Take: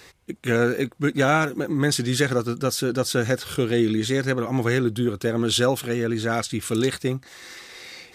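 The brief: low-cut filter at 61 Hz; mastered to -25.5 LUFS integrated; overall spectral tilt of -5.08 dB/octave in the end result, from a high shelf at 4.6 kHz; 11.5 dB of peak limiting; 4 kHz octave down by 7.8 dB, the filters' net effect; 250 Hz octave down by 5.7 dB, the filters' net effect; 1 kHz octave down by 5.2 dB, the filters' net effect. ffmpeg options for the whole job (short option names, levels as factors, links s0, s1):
-af "highpass=61,equalizer=f=250:t=o:g=-7,equalizer=f=1000:t=o:g=-7,equalizer=f=4000:t=o:g=-7,highshelf=f=4600:g=-4.5,volume=2,alimiter=limit=0.178:level=0:latency=1"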